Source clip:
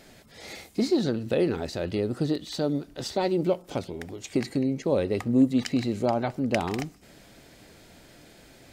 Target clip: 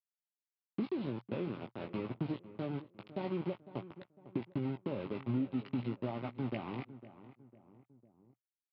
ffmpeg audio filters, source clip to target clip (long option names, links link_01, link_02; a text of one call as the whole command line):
ffmpeg -i in.wav -filter_complex "[0:a]aresample=11025,aeval=exprs='val(0)*gte(abs(val(0)),0.0501)':channel_layout=same,aresample=44100,acompressor=threshold=-25dB:ratio=5,highpass=120,equalizer=frequency=120:width_type=q:width=4:gain=8,equalizer=frequency=190:width_type=q:width=4:gain=4,equalizer=frequency=480:width_type=q:width=4:gain=-6,equalizer=frequency=710:width_type=q:width=4:gain=-3,equalizer=frequency=1700:width_type=q:width=4:gain=-10,lowpass=frequency=3000:width=0.5412,lowpass=frequency=3000:width=1.3066,asplit=2[link_01][link_02];[link_02]adelay=503,lowpass=frequency=1700:poles=1,volume=-15dB,asplit=2[link_03][link_04];[link_04]adelay=503,lowpass=frequency=1700:poles=1,volume=0.36,asplit=2[link_05][link_06];[link_06]adelay=503,lowpass=frequency=1700:poles=1,volume=0.36[link_07];[link_01][link_03][link_05][link_07]amix=inputs=4:normalize=0,acrossover=split=620[link_08][link_09];[link_08]acompressor=mode=upward:threshold=-47dB:ratio=2.5[link_10];[link_09]flanger=delay=15.5:depth=6:speed=0.47[link_11];[link_10][link_11]amix=inputs=2:normalize=0,volume=-6.5dB" out.wav